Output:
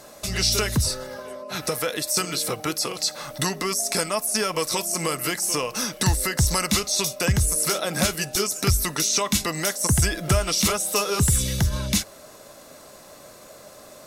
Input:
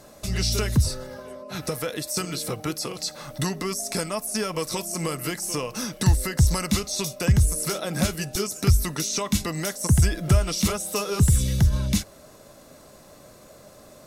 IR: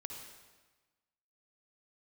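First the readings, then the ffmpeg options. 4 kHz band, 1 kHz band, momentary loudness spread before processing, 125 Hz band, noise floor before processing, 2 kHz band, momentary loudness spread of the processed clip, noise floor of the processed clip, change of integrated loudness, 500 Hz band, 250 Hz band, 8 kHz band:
+5.5 dB, +4.5 dB, 9 LU, -3.5 dB, -50 dBFS, +5.0 dB, 6 LU, -47 dBFS, +2.0 dB, +2.5 dB, -1.0 dB, +5.5 dB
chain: -af "lowshelf=f=310:g=-10,volume=1.88"

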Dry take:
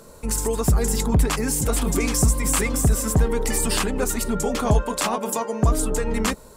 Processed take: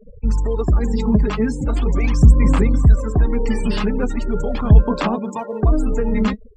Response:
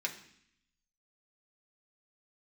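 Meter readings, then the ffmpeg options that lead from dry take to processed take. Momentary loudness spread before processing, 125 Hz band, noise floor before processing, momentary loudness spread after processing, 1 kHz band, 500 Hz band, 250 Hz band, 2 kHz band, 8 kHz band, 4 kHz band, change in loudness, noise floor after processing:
4 LU, +6.5 dB, -45 dBFS, 9 LU, -0.5 dB, +1.5 dB, +5.5 dB, -1.5 dB, -18.0 dB, -5.5 dB, +4.0 dB, -40 dBFS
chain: -filter_complex "[0:a]lowpass=4100,afftfilt=real='re*gte(hypot(re,im),0.0251)':imag='im*gte(hypot(re,im),0.0251)':win_size=1024:overlap=0.75,acrossover=split=330[s0][s1];[s0]acontrast=81[s2];[s2][s1]amix=inputs=2:normalize=0,aphaser=in_gain=1:out_gain=1:delay=4.8:decay=0.58:speed=0.4:type=sinusoidal,volume=0.708"

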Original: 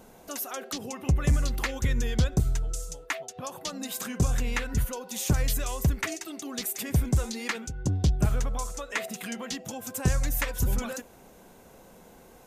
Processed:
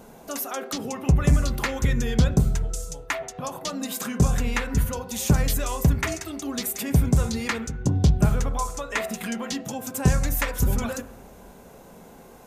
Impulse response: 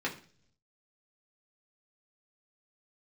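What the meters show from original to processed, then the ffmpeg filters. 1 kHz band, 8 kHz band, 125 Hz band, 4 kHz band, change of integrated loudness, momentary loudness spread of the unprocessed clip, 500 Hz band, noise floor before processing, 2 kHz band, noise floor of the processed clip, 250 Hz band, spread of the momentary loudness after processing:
+6.0 dB, +3.0 dB, +5.0 dB, +2.5 dB, +4.5 dB, 9 LU, +5.5 dB, -53 dBFS, +3.5 dB, -47 dBFS, +6.5 dB, 10 LU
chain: -filter_complex "[0:a]asplit=2[s0][s1];[1:a]atrim=start_sample=2205,asetrate=23814,aresample=44100,lowpass=3400[s2];[s1][s2]afir=irnorm=-1:irlink=0,volume=0.168[s3];[s0][s3]amix=inputs=2:normalize=0,volume=1.41"

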